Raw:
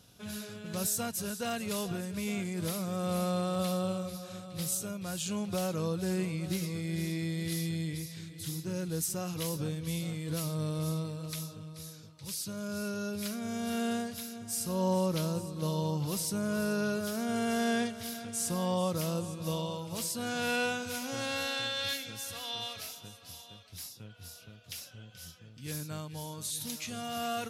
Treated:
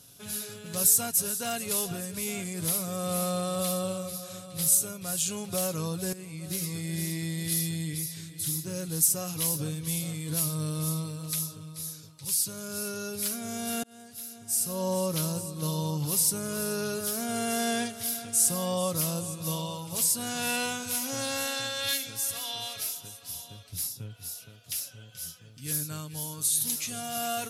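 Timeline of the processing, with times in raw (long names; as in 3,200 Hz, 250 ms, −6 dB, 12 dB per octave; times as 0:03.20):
0:06.13–0:06.72: fade in, from −15 dB
0:13.83–0:15.41: fade in equal-power
0:23.35–0:24.17: low-shelf EQ 280 Hz +10 dB
whole clip: parametric band 11,000 Hz +13 dB 1.5 octaves; comb filter 7.2 ms, depth 36%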